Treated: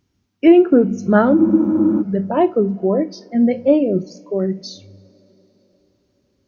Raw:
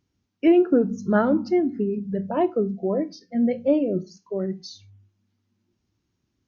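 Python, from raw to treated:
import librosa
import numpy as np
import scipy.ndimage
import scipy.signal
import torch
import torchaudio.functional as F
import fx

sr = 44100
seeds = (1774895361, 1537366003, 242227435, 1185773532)

y = fx.rev_double_slope(x, sr, seeds[0], early_s=0.33, late_s=4.7, knee_db=-18, drr_db=17.5)
y = fx.spec_freeze(y, sr, seeds[1], at_s=1.38, hold_s=0.62)
y = y * 10.0 ** (6.5 / 20.0)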